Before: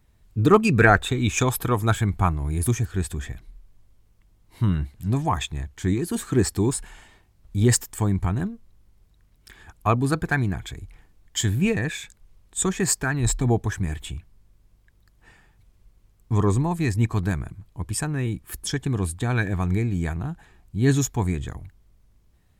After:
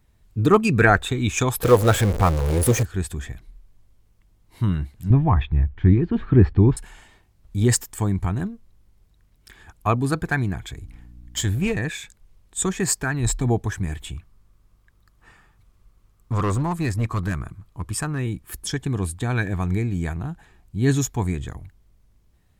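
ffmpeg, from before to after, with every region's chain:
-filter_complex "[0:a]asettb=1/sr,asplit=3[a][b][c];[a]atrim=end=1.634[d];[b]atrim=start=1.63:end=2.83,asetpts=PTS-STARTPTS,afade=t=in:d=0.004:c=qsin,afade=t=out:st=1.196:d=0.004:c=qsin,aeval=exprs='val(0)+0.5*0.075*sgn(val(0))':c=same,equalizer=f=500:t=o:w=0.51:g=14[e];[c]atrim=start=2.826[f];[d][e]acrossfade=d=0.004:c1=hsin:c2=qsin[g];[g][f]acrossfade=d=0.004:c1=qsin:c2=hsin,asettb=1/sr,asplit=3[h][i][j];[h]atrim=end=5.104[k];[i]atrim=start=5.1:end=6.77,asetpts=PTS-STARTPTS,afade=t=in:d=0.004:c=qsin,afade=t=out:st=1.666:d=0.004:c=qsin,lowpass=f=3.1k:w=0.5412,lowpass=f=3.1k:w=1.3066,aemphasis=mode=reproduction:type=bsi[l];[j]atrim=start=6.766[m];[k][l]acrossfade=d=0.004:c1=hsin:c2=qsin[n];[n][m]acrossfade=d=0.004:c1=qsin:c2=hsin,asettb=1/sr,asplit=3[o][p][q];[o]atrim=end=10.724[r];[p]atrim=start=10.72:end=11.78,asetpts=PTS-STARTPTS,afade=t=in:d=0.004:c=qsin,afade=t=out:st=1.056:d=0.004:c=qsin,aeval=exprs='val(0)+0.00562*(sin(2*PI*60*n/s)+sin(2*PI*2*60*n/s)/2+sin(2*PI*3*60*n/s)/3+sin(2*PI*4*60*n/s)/4+sin(2*PI*5*60*n/s)/5)':c=same,asubboost=boost=5.5:cutoff=94,aeval=exprs='clip(val(0),-1,0.0944)':c=same[s];[q]atrim=start=11.776[t];[r][s]acrossfade=d=0.004:c1=hsin:c2=qsin[u];[u][t]acrossfade=d=0.004:c1=qsin:c2=hsin,asettb=1/sr,asplit=3[v][w][x];[v]atrim=end=14.144[y];[w]atrim=start=14.14:end=18.19,asetpts=PTS-STARTPTS,afade=t=in:d=0.004:c=qsin,afade=t=out:st=4.046:d=0.004:c=qsin,equalizer=f=1.2k:t=o:w=0.41:g=9,asoftclip=type=hard:threshold=-18dB[z];[x]atrim=start=18.186[aa];[y][z]acrossfade=d=0.004:c1=hsin:c2=qsin[ab];[ab][aa]acrossfade=d=0.004:c1=qsin:c2=hsin"

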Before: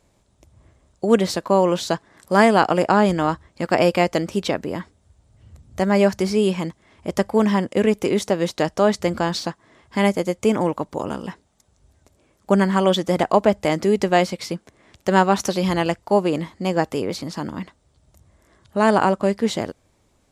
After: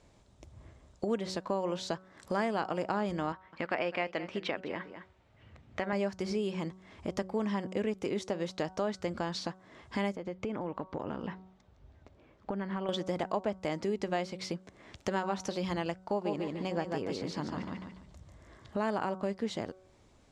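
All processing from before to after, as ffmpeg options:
-filter_complex "[0:a]asettb=1/sr,asplit=3[a][b][c];[a]atrim=end=3.324[d];[b]atrim=start=3.32:end=5.93,asetpts=PTS-STARTPTS,afade=t=in:d=0.004:c=qsin,afade=t=out:st=2.606:d=0.004:c=qsin,lowpass=f=2.3k:t=q:w=1.5,aemphasis=mode=production:type=bsi,aecho=1:1:206:0.15,atrim=end_sample=115101[e];[c]atrim=start=5.926[f];[d][e]acrossfade=d=0.004:c1=hsin:c2=qsin[g];[g][f]acrossfade=d=0.004:c1=qsin:c2=hsin,asettb=1/sr,asplit=3[h][i][j];[h]atrim=end=10.164[k];[i]atrim=start=10.16:end=12.89,asetpts=PTS-STARTPTS,afade=t=in:d=0.004:c=qsin,afade=t=out:st=2.726:d=0.004:c=qsin,lowpass=3.1k,acompressor=threshold=-24dB:ratio=4:attack=3.2:release=140:knee=1:detection=peak[l];[j]atrim=start=12.886[m];[k][l]acrossfade=d=0.004:c1=hsin:c2=qsin[n];[n][m]acrossfade=d=0.004:c1=qsin:c2=hsin,asettb=1/sr,asplit=3[o][p][q];[o]atrim=end=16.044[r];[p]atrim=start=16.04:end=18.84,asetpts=PTS-STARTPTS,afade=t=in:d=0.004:c=qsin,afade=t=out:st=2.796:d=0.004:c=qsin,highshelf=f=10k:g=-6.5,aecho=1:1:145|290|435|580:0.596|0.155|0.0403|0.0105,atrim=end_sample=123480[s];[q]atrim=start=18.836[t];[r][s]acrossfade=d=0.004:c1=hsin:c2=qsin[u];[u][t]acrossfade=d=0.004:c1=qsin:c2=hsin,lowpass=6.6k,bandreject=f=187.2:t=h:w=4,bandreject=f=374.4:t=h:w=4,bandreject=f=561.6:t=h:w=4,bandreject=f=748.8:t=h:w=4,bandreject=f=936:t=h:w=4,bandreject=f=1.1232k:t=h:w=4,bandreject=f=1.3104k:t=h:w=4,bandreject=f=1.4976k:t=h:w=4,acompressor=threshold=-37dB:ratio=2.5"

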